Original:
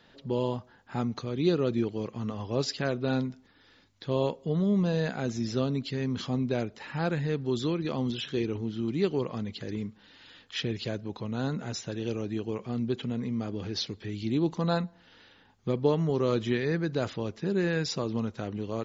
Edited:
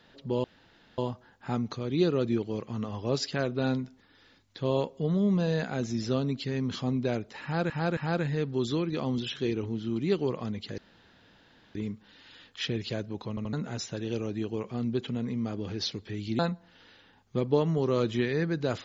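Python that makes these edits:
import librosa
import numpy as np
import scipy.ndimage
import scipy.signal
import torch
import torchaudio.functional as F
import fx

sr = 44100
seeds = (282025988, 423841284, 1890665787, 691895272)

y = fx.edit(x, sr, fx.insert_room_tone(at_s=0.44, length_s=0.54),
    fx.repeat(start_s=6.89, length_s=0.27, count=3),
    fx.insert_room_tone(at_s=9.7, length_s=0.97),
    fx.stutter_over(start_s=11.24, slice_s=0.08, count=3),
    fx.cut(start_s=14.34, length_s=0.37), tone=tone)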